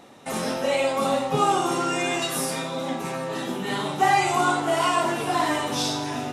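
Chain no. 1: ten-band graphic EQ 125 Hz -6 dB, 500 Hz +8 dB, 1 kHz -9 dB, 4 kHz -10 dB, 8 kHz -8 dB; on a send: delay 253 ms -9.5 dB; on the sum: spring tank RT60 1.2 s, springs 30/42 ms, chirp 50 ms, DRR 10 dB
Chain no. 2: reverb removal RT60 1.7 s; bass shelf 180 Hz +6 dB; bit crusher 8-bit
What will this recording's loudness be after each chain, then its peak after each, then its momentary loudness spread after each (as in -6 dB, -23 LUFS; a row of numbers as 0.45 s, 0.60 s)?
-24.0 LUFS, -26.0 LUFS; -9.5 dBFS, -9.0 dBFS; 8 LU, 10 LU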